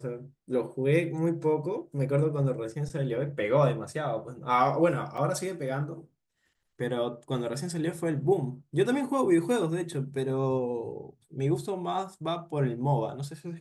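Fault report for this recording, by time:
0:05.17–0:05.18: drop-out 5.6 ms

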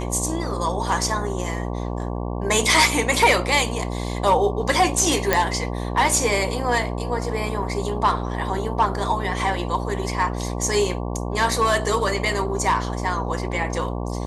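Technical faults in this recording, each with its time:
mains buzz 60 Hz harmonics 19 −27 dBFS
0:05.33: click −3 dBFS

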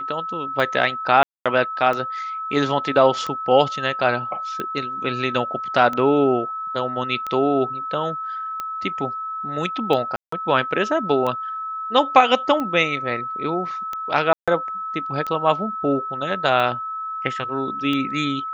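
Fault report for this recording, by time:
scratch tick 45 rpm −14 dBFS
whistle 1,300 Hz −26 dBFS
0:01.23–0:01.46: drop-out 226 ms
0:10.16–0:10.32: drop-out 164 ms
0:14.33–0:14.48: drop-out 146 ms

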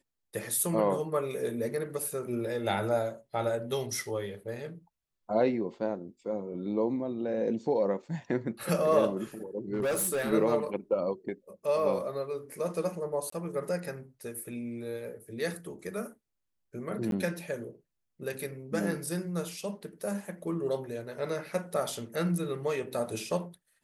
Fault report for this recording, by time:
0:09.74–0:10.33: clipping −26 dBFS
0:13.30–0:13.32: drop-out 24 ms
0:17.11–0:17.12: drop-out 12 ms

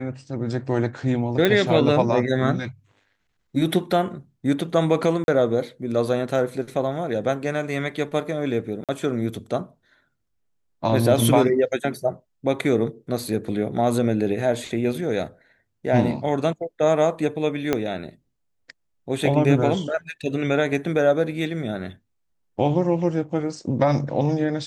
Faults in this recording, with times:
0:01.45: click −6 dBFS
0:05.24–0:05.28: drop-out 41 ms
0:08.84–0:08.89: drop-out 47 ms
0:17.73: click −7 dBFS

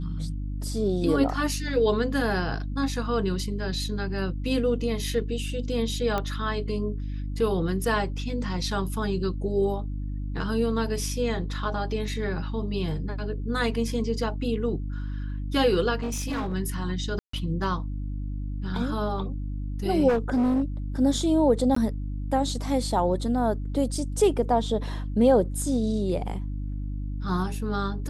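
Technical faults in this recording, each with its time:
mains hum 50 Hz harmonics 6 −31 dBFS
0:06.18: click −14 dBFS
0:16.00–0:16.55: clipping −25.5 dBFS
0:17.19–0:17.33: drop-out 144 ms
0:20.08–0:20.62: clipping −19.5 dBFS
0:21.75–0:21.76: drop-out 14 ms

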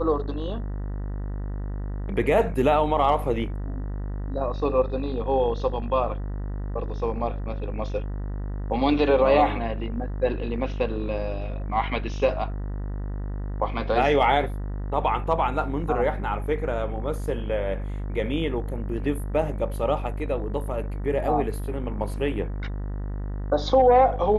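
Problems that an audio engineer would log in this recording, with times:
mains buzz 50 Hz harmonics 39 −30 dBFS

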